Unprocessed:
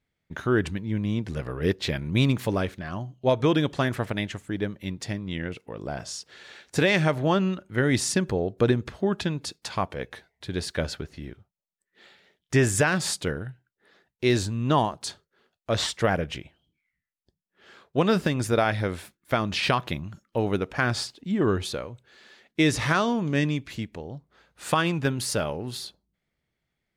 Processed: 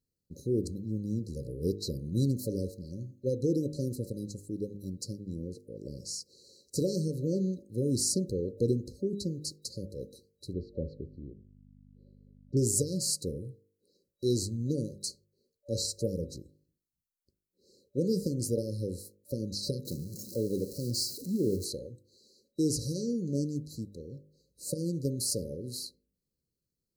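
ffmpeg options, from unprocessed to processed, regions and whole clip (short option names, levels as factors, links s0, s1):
-filter_complex "[0:a]asettb=1/sr,asplit=3[s0][s1][s2];[s0]atrim=end=10.534[s3];[s1]atrim=start=10.53:end=12.57,asetpts=PTS-STARTPTS,afade=t=in:d=0.004:c=qsin,afade=t=out:st=2.036:d=0.004:c=qsin,lowpass=f=2200:w=0.5412,lowpass=f=2200:w=1.3066,aeval=exprs='val(0)+0.00708*(sin(2*PI*50*n/s)+sin(2*PI*2*50*n/s)/2+sin(2*PI*3*50*n/s)/3+sin(2*PI*4*50*n/s)/4+sin(2*PI*5*50*n/s)/5)':c=same[s4];[s2]atrim=start=12.566[s5];[s3][s4]acrossfade=d=0.004:c1=hsin:c2=qsin[s6];[s6][s5]acrossfade=d=0.004:c1=qsin:c2=hsin,asettb=1/sr,asplit=3[s7][s8][s9];[s7]atrim=end=19.854[s10];[s8]atrim=start=19.85:end=21.65,asetpts=PTS-STARTPTS,afade=t=in:d=0.004:c=qsin,afade=t=out:st=1.796:d=0.004:c=qsin,aeval=exprs='val(0)+0.5*0.0211*sgn(val(0))':c=same,highpass=100[s11];[s9]atrim=start=21.646[s12];[s10][s11]acrossfade=d=0.004:c1=hsin:c2=qsin[s13];[s13][s12]acrossfade=d=0.004:c1=qsin:c2=hsin,bandreject=f=50.59:t=h:w=4,bandreject=f=101.18:t=h:w=4,bandreject=f=151.77:t=h:w=4,bandreject=f=202.36:t=h:w=4,bandreject=f=252.95:t=h:w=4,bandreject=f=303.54:t=h:w=4,bandreject=f=354.13:t=h:w=4,bandreject=f=404.72:t=h:w=4,bandreject=f=455.31:t=h:w=4,bandreject=f=505.9:t=h:w=4,bandreject=f=556.49:t=h:w=4,bandreject=f=607.08:t=h:w=4,bandreject=f=657.67:t=h:w=4,bandreject=f=708.26:t=h:w=4,bandreject=f=758.85:t=h:w=4,bandreject=f=809.44:t=h:w=4,bandreject=f=860.03:t=h:w=4,bandreject=f=910.62:t=h:w=4,bandreject=f=961.21:t=h:w=4,bandreject=f=1011.8:t=h:w=4,bandreject=f=1062.39:t=h:w=4,bandreject=f=1112.98:t=h:w=4,bandreject=f=1163.57:t=h:w=4,bandreject=f=1214.16:t=h:w=4,bandreject=f=1264.75:t=h:w=4,bandreject=f=1315.34:t=h:w=4,bandreject=f=1365.93:t=h:w=4,afftfilt=real='re*(1-between(b*sr/4096,580,3900))':imag='im*(1-between(b*sr/4096,580,3900))':win_size=4096:overlap=0.75,highshelf=f=7200:g=9,volume=0.531"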